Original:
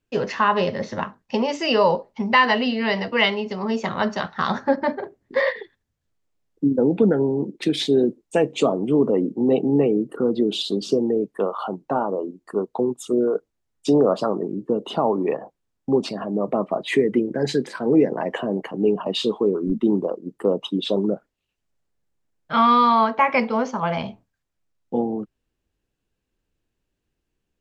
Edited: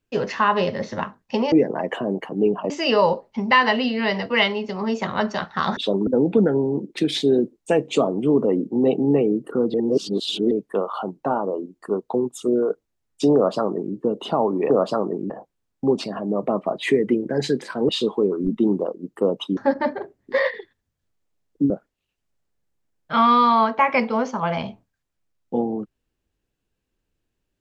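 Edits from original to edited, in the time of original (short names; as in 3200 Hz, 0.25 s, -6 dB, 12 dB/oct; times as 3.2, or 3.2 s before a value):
4.59–6.72 swap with 20.8–21.1
10.39–11.16 reverse
14–14.6 copy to 15.35
17.94–19.12 move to 1.52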